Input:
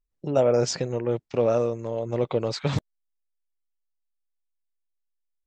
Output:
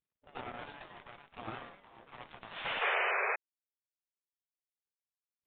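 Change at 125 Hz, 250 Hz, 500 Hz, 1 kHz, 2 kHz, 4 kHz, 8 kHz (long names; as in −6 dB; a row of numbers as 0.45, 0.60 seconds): −27.5 dB, −23.5 dB, −20.0 dB, −2.5 dB, +8.5 dB, −6.5 dB, below −40 dB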